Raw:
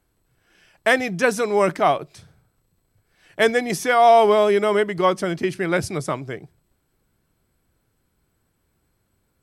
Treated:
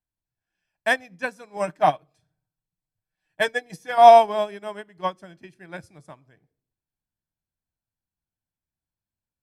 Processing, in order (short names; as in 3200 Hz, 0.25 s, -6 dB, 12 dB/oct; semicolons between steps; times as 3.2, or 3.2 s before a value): 1.56–3.98 comb 6.5 ms, depth 56%; reverb RT60 0.65 s, pre-delay 3 ms, DRR 17.5 dB; upward expander 2.5:1, over -27 dBFS; gain +2 dB